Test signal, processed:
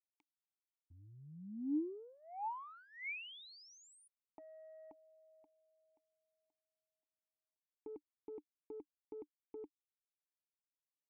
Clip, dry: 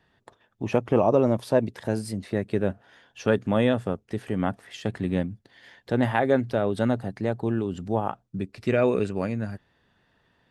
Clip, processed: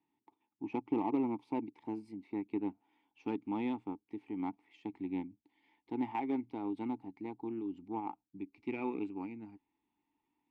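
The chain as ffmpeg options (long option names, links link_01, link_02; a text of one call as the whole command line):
ffmpeg -i in.wav -filter_complex "[0:a]asubboost=boost=5.5:cutoff=52,aeval=exprs='0.398*(cos(1*acos(clip(val(0)/0.398,-1,1)))-cos(1*PI/2))+0.01*(cos(4*acos(clip(val(0)/0.398,-1,1)))-cos(4*PI/2))+0.00562*(cos(6*acos(clip(val(0)/0.398,-1,1)))-cos(6*PI/2))+0.0224*(cos(7*acos(clip(val(0)/0.398,-1,1)))-cos(7*PI/2))':channel_layout=same,asplit=3[link_01][link_02][link_03];[link_01]bandpass=frequency=300:width_type=q:width=8,volume=0dB[link_04];[link_02]bandpass=frequency=870:width_type=q:width=8,volume=-6dB[link_05];[link_03]bandpass=frequency=2240:width_type=q:width=8,volume=-9dB[link_06];[link_04][link_05][link_06]amix=inputs=3:normalize=0,volume=1.5dB" out.wav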